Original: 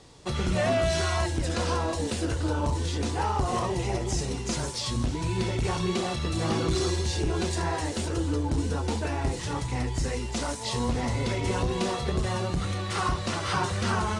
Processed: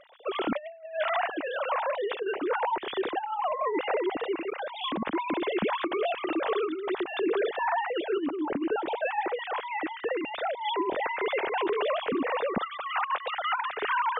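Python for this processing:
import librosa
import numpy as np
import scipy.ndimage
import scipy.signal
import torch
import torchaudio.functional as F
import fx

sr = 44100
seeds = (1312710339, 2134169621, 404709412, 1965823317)

y = fx.sine_speech(x, sr)
y = fx.low_shelf(y, sr, hz=340.0, db=-10.5, at=(1.28, 2.2))
y = fx.over_compress(y, sr, threshold_db=-27.0, ratio=-0.5)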